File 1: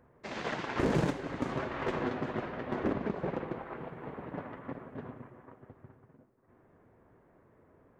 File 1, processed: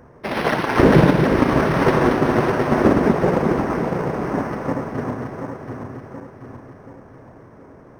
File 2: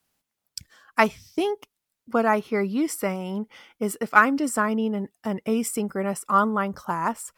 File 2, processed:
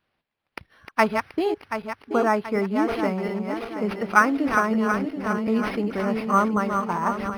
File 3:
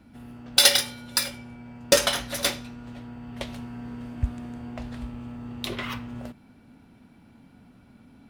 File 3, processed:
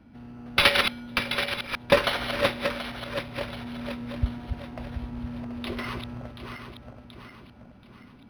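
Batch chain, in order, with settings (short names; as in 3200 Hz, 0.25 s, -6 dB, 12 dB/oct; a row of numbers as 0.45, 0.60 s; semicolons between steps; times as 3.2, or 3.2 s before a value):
regenerating reverse delay 0.365 s, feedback 66%, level -6 dB; decimation joined by straight lines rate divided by 6×; normalise peaks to -2 dBFS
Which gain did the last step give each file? +16.5, 0.0, 0.0 dB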